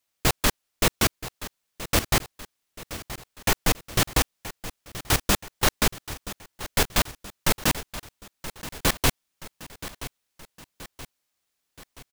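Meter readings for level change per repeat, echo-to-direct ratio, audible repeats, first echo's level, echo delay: -5.5 dB, -13.0 dB, 3, -14.5 dB, 976 ms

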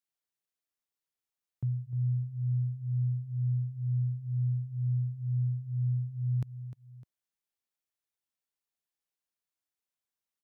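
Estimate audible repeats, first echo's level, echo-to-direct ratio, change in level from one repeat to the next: 2, -13.0 dB, -12.0 dB, -7.0 dB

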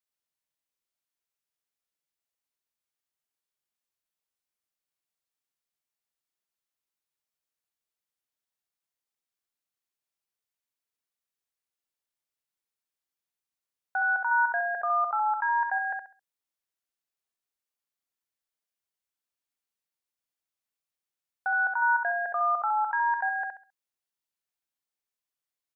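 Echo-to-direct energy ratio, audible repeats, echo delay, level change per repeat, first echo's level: -5.0 dB, 3, 67 ms, -11.5 dB, -5.5 dB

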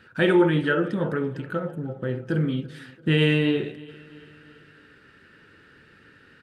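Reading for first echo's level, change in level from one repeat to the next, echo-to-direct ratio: -22.0 dB, -5.0 dB, -20.5 dB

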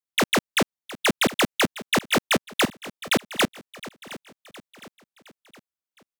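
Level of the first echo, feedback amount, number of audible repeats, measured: -17.0 dB, 47%, 3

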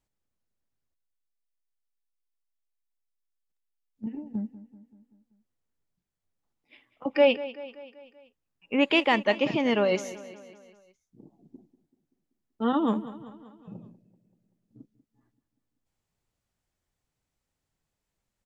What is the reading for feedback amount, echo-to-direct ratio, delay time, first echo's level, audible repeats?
56%, -14.5 dB, 192 ms, -16.0 dB, 4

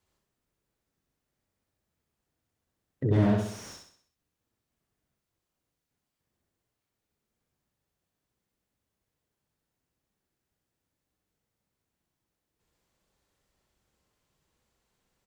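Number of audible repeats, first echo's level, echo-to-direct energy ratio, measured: 5, -3.5 dB, -2.5 dB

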